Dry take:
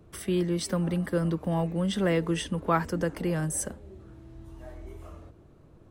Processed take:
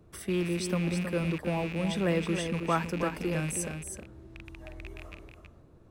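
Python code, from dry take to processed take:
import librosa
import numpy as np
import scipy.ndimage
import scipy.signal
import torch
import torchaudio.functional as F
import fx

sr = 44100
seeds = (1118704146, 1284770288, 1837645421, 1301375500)

p1 = fx.rattle_buzz(x, sr, strikes_db=-40.0, level_db=-27.0)
p2 = fx.notch(p1, sr, hz=3100.0, q=20.0)
p3 = p2 + fx.echo_single(p2, sr, ms=319, db=-7.0, dry=0)
y = p3 * librosa.db_to_amplitude(-3.0)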